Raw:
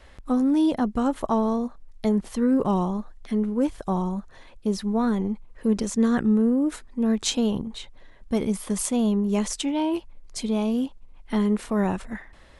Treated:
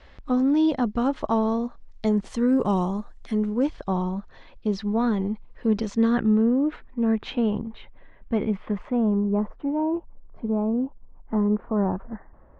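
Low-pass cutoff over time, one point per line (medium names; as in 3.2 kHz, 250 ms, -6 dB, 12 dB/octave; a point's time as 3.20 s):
low-pass 24 dB/octave
1.47 s 5.3 kHz
2.60 s 8.9 kHz
3.35 s 8.9 kHz
3.76 s 4.9 kHz
5.90 s 4.9 kHz
6.87 s 2.7 kHz
8.54 s 2.7 kHz
9.39 s 1.2 kHz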